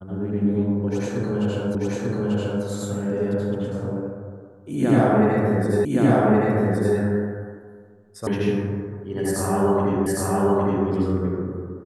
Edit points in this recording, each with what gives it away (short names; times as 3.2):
1.75 repeat of the last 0.89 s
5.85 repeat of the last 1.12 s
8.27 sound cut off
10.06 repeat of the last 0.81 s